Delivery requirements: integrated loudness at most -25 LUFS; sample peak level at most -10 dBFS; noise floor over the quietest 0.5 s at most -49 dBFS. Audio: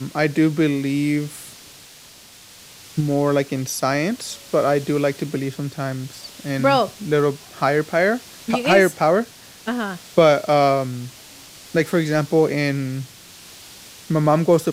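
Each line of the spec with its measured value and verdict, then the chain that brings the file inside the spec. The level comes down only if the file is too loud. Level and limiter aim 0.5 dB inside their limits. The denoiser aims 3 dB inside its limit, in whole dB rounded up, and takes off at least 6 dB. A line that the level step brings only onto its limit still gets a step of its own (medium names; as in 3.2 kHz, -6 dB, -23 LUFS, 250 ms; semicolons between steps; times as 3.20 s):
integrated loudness -20.0 LUFS: fail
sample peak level -2.5 dBFS: fail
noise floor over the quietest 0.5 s -45 dBFS: fail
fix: trim -5.5 dB; peak limiter -10.5 dBFS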